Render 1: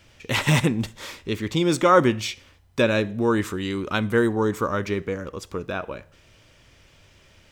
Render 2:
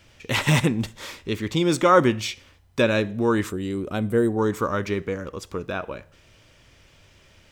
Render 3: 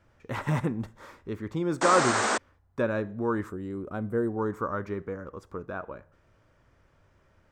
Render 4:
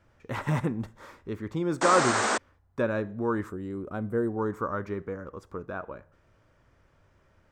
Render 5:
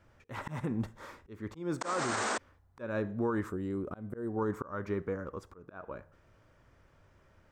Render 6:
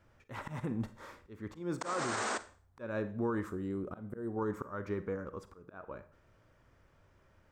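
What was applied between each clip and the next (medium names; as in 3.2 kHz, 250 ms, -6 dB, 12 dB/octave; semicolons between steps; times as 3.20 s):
time-frequency box 3.50–4.38 s, 780–7200 Hz -9 dB
painted sound noise, 1.81–2.38 s, 200–8800 Hz -13 dBFS; resonant high shelf 2 kHz -11.5 dB, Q 1.5; trim -7.5 dB
no audible change
slow attack 280 ms; peak limiter -23.5 dBFS, peak gain reduction 11 dB
reverberation RT60 0.40 s, pre-delay 35 ms, DRR 14 dB; trim -2.5 dB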